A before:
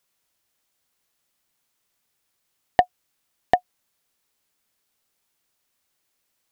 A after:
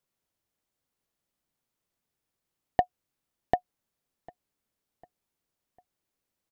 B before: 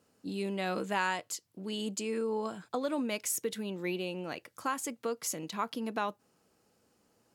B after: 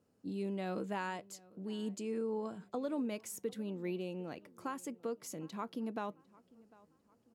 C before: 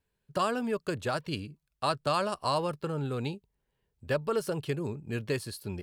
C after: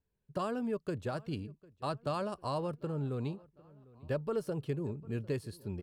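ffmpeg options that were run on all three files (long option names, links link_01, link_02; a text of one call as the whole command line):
ffmpeg -i in.wav -filter_complex "[0:a]tiltshelf=frequency=780:gain=5.5,asplit=2[link_01][link_02];[link_02]adelay=750,lowpass=frequency=2900:poles=1,volume=-23dB,asplit=2[link_03][link_04];[link_04]adelay=750,lowpass=frequency=2900:poles=1,volume=0.45,asplit=2[link_05][link_06];[link_06]adelay=750,lowpass=frequency=2900:poles=1,volume=0.45[link_07];[link_01][link_03][link_05][link_07]amix=inputs=4:normalize=0,volume=-7dB" out.wav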